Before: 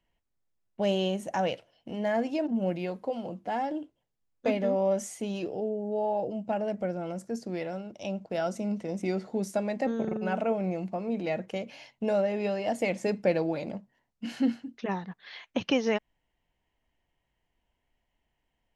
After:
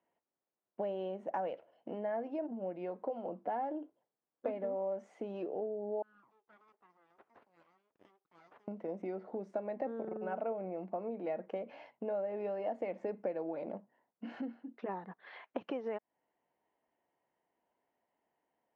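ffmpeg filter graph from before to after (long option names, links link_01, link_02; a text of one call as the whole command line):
ffmpeg -i in.wav -filter_complex "[0:a]asettb=1/sr,asplit=3[link_01][link_02][link_03];[link_01]atrim=end=6.024[link_04];[link_02]atrim=start=6.02:end=8.68,asetpts=PTS-STARTPTS,afade=type=in:duration=0.004:curve=qsin,afade=type=out:start_time=2.656:duration=0.004:curve=qsin,bandpass=frequency=7800:width_type=q:width=1.9,aeval=exprs='abs(val(0))':channel_layout=same[link_05];[link_03]atrim=start=8.676[link_06];[link_04][link_05]acrossfade=duration=0.004:curve1=hsin:curve2=qsin[link_07];[link_07][link_06]acrossfade=duration=0.004:curve1=qsin:curve2=hsin,lowpass=1200,acompressor=threshold=-36dB:ratio=6,highpass=340,volume=3dB" out.wav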